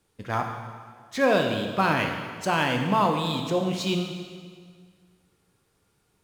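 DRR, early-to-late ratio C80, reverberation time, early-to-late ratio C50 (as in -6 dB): 3.5 dB, 6.0 dB, 1.8 s, 5.0 dB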